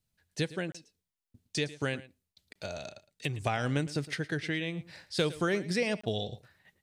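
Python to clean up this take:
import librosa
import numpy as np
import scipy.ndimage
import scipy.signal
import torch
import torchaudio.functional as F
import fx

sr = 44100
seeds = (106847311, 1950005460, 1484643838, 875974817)

y = fx.fix_declip(x, sr, threshold_db=-17.5)
y = fx.fix_interpolate(y, sr, at_s=(0.72, 2.53, 6.01), length_ms=25.0)
y = fx.fix_echo_inverse(y, sr, delay_ms=111, level_db=-17.5)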